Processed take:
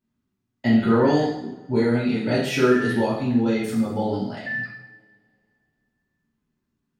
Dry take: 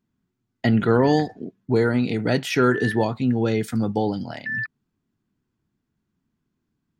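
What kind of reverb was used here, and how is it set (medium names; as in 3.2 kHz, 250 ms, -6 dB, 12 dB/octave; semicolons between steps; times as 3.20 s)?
two-slope reverb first 0.72 s, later 2.6 s, from -26 dB, DRR -8.5 dB; trim -9 dB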